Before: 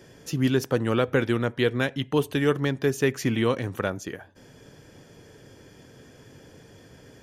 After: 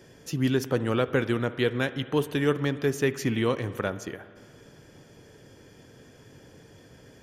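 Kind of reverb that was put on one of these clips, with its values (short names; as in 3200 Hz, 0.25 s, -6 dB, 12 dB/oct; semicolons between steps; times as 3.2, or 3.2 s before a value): spring tank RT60 2.2 s, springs 55 ms, chirp 80 ms, DRR 14 dB; gain -2 dB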